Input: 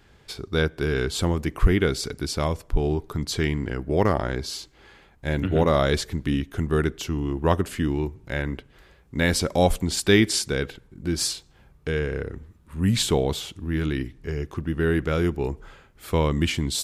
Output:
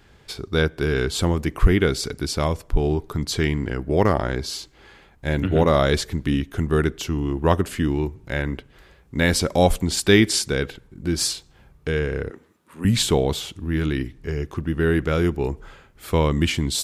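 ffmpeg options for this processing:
-filter_complex "[0:a]asettb=1/sr,asplit=3[s0][s1][s2];[s0]atrim=end=12.304[s3];[s1]atrim=start=12.3:end=12.85,asetpts=PTS-STARTPTS,afade=t=in:d=0.004:c=qsin,afade=t=out:st=0.546:d=0.004:c=qsin,highpass=330[s4];[s2]atrim=start=12.846[s5];[s3][s4]acrossfade=d=0.004:c1=hsin:c2=qsin[s6];[s6][s5]acrossfade=d=0.004:c1=qsin:c2=hsin,volume=1.33"

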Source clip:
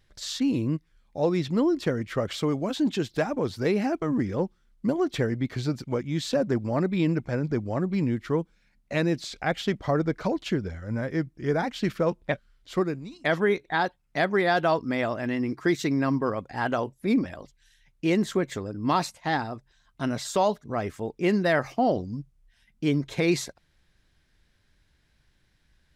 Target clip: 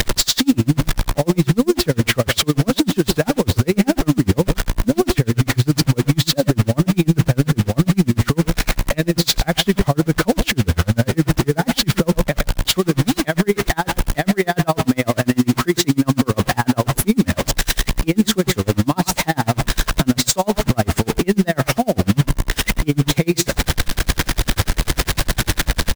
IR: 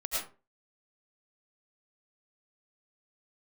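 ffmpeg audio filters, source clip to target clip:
-filter_complex "[0:a]aeval=exprs='val(0)+0.5*0.0266*sgn(val(0))':c=same,acrossover=split=200[s0][s1];[s1]acompressor=threshold=0.00562:ratio=1.5[s2];[s0][s2]amix=inputs=2:normalize=0,acrusher=bits=6:mix=0:aa=0.000001,aecho=1:1:113:0.224,alimiter=level_in=26.6:limit=0.891:release=50:level=0:latency=1,aeval=exprs='val(0)*pow(10,-33*(0.5-0.5*cos(2*PI*10*n/s))/20)':c=same,volume=0.75"

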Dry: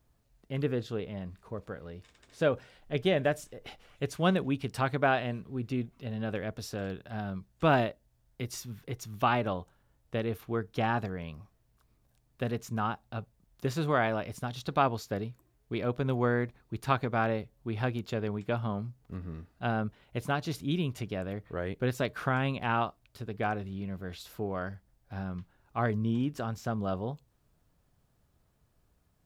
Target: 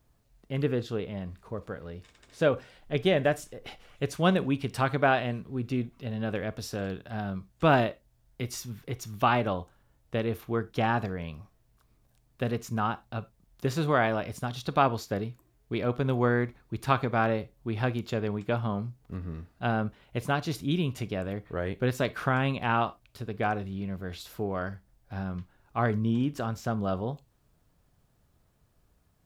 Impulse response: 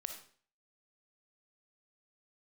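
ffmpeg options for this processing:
-filter_complex "[0:a]asplit=2[s0][s1];[1:a]atrim=start_sample=2205,afade=t=out:st=0.22:d=0.01,atrim=end_sample=10143,asetrate=74970,aresample=44100[s2];[s1][s2]afir=irnorm=-1:irlink=0,volume=0.891[s3];[s0][s3]amix=inputs=2:normalize=0"

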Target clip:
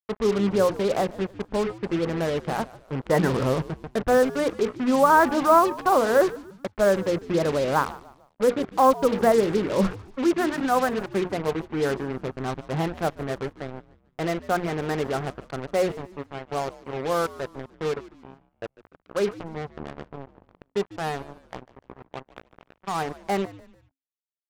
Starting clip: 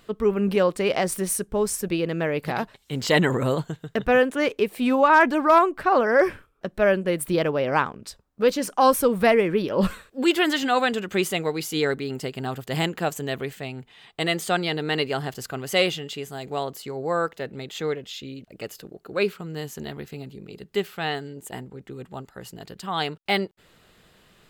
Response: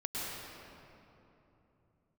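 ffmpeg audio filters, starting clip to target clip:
-filter_complex "[0:a]lowpass=f=1500:w=0.5412,lowpass=f=1500:w=1.3066,bandreject=f=60:t=h:w=6,bandreject=f=120:t=h:w=6,bandreject=f=180:t=h:w=6,bandreject=f=240:t=h:w=6,bandreject=f=300:t=h:w=6,bandreject=f=360:t=h:w=6,bandreject=f=420:t=h:w=6,bandreject=f=480:t=h:w=6,acrusher=bits=4:mix=0:aa=0.5,asplit=4[s0][s1][s2][s3];[s1]adelay=147,afreqshift=-90,volume=0.119[s4];[s2]adelay=294,afreqshift=-180,volume=0.0462[s5];[s3]adelay=441,afreqshift=-270,volume=0.018[s6];[s0][s4][s5][s6]amix=inputs=4:normalize=0"

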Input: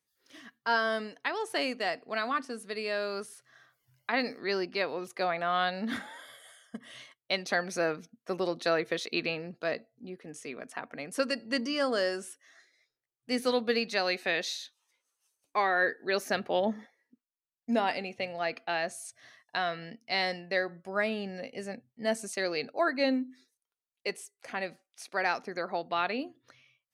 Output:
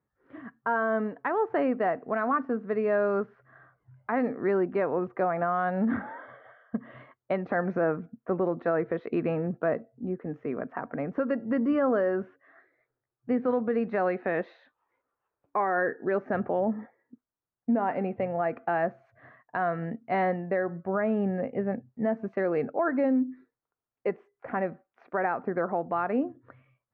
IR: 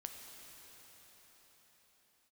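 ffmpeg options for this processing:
-af "lowpass=f=1500:w=0.5412,lowpass=f=1500:w=1.3066,equalizer=f=77:w=0.38:g=10,alimiter=level_in=1.12:limit=0.0631:level=0:latency=1:release=174,volume=0.891,lowshelf=f=180:g=-4,volume=2.51"

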